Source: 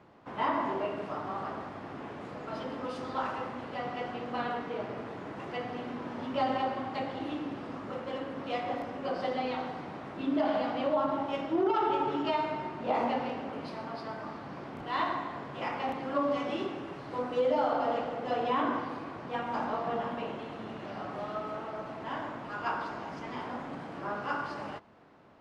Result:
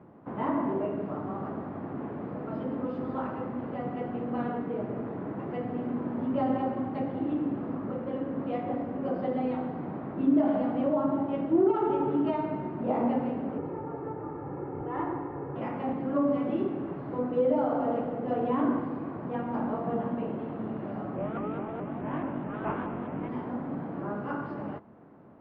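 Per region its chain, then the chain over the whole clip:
13.58–15.56 Gaussian blur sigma 3.9 samples + comb 2.3 ms, depth 89%
21.16–23.29 CVSD 16 kbps + doubler 21 ms -2 dB + shaped vibrato saw up 4.7 Hz, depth 160 cents
whole clip: dynamic EQ 1000 Hz, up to -4 dB, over -41 dBFS, Q 0.76; LPF 1600 Hz 12 dB/oct; bell 200 Hz +10 dB 2.7 oct; gain -1 dB

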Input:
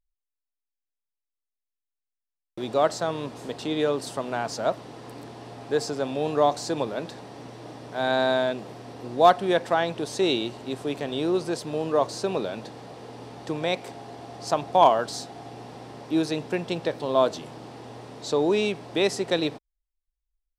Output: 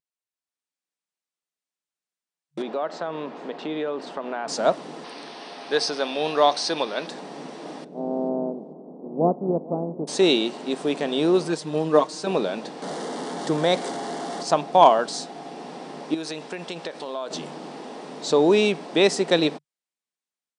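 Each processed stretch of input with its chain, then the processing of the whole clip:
2.62–4.48 BPF 140–2500 Hz + low shelf 240 Hz -7 dB + compressor 3:1, threshold -31 dBFS
5.04–7.07 polynomial smoothing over 15 samples + tilt +3.5 dB/oct
7.83–10.07 spectral contrast lowered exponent 0.56 + Gaussian blur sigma 15 samples + feedback echo 0.443 s, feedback 16%, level -22 dB
11.48–12.27 bell 540 Hz -4 dB 0.79 oct + comb 6.5 ms, depth 83% + upward expander, over -29 dBFS
12.82–14.43 zero-crossing step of -34.5 dBFS + bell 2500 Hz -14 dB 0.22 oct
16.14–17.31 low shelf 420 Hz -10 dB + compressor 5:1, threshold -33 dBFS
whole clip: FFT band-pass 140–10000 Hz; AGC gain up to 5 dB

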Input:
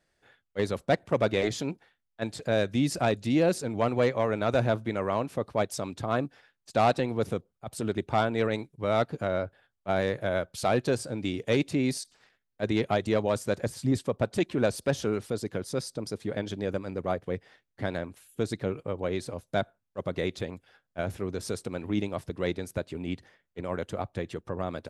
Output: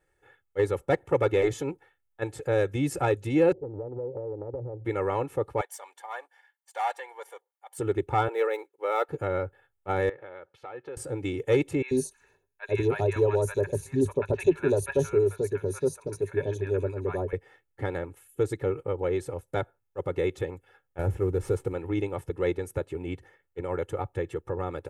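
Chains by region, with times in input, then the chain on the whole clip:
3.52–4.85 steep low-pass 680 Hz 48 dB/oct + compressor 16:1, threshold -32 dBFS + Doppler distortion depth 0.24 ms
5.61–7.78 half-wave gain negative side -3 dB + HPF 770 Hz 24 dB/oct + notch comb 1300 Hz
8.28–9.09 median filter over 5 samples + HPF 430 Hz 24 dB/oct
10.09–10.97 HPF 760 Hz 6 dB/oct + compressor 2.5:1, threshold -41 dBFS + air absorption 290 m
11.82–17.33 ripple EQ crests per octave 1.5, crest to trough 11 dB + three bands offset in time mids, highs, lows 60/90 ms, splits 960/3500 Hz
20.99–21.73 CVSD 64 kbps + tilt -2 dB/oct
whole clip: bell 4500 Hz -14.5 dB 1 oct; comb 2.3 ms, depth 88%

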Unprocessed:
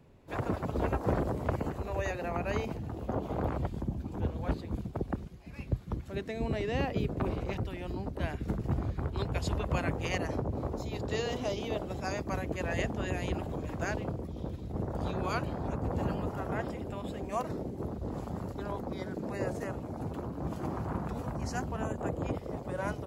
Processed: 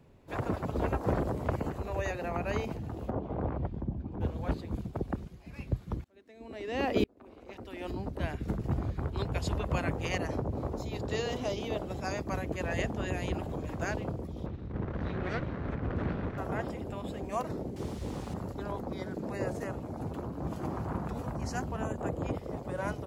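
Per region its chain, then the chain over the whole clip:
3.1–4.21 tape spacing loss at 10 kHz 31 dB + notch 1300 Hz, Q 27
6.04–7.91 EQ curve 100 Hz 0 dB, 150 Hz -9 dB, 230 Hz +10 dB + dB-ramp tremolo swelling 1 Hz, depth 37 dB
14.46–16.38 minimum comb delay 0.49 ms + LPF 3000 Hz
17.76–18.34 notch 660 Hz + requantised 8-bit, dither triangular + air absorption 65 m
whole clip: dry

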